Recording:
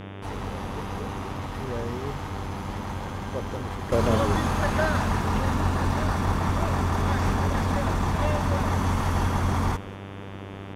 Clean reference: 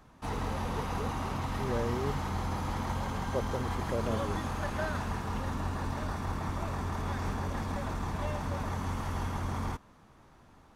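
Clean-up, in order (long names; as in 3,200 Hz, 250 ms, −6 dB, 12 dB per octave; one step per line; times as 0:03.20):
hum removal 98.1 Hz, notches 37
noise reduction from a noise print 20 dB
echo removal 191 ms −21 dB
level 0 dB, from 0:03.92 −9.5 dB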